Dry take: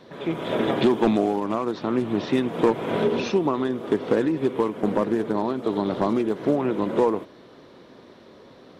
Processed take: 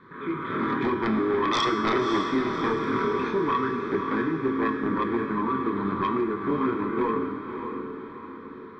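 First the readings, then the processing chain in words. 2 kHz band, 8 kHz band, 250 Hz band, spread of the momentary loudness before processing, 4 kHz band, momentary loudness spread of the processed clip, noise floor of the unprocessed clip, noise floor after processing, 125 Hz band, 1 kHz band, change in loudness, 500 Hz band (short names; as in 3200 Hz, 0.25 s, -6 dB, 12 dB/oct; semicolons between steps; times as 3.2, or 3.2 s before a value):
+4.5 dB, n/a, -2.5 dB, 5 LU, +1.5 dB, 10 LU, -49 dBFS, -41 dBFS, -3.0 dB, +2.5 dB, -2.5 dB, -4.5 dB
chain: spectral gain 1.3–2.19, 290–1800 Hz +8 dB; EQ curve 400 Hz 0 dB, 690 Hz -25 dB, 1100 Hz +11 dB, 2100 Hz +2 dB, 5300 Hz -19 dB; chorus voices 2, 0.52 Hz, delay 24 ms, depth 3.1 ms; sine folder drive 8 dB, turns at -9.5 dBFS; Butterworth band-stop 2800 Hz, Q 5.7; resonator 89 Hz, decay 1.4 s, harmonics odd, mix 80%; diffused feedback echo 0.58 s, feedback 49%, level -7 dB; gain +2 dB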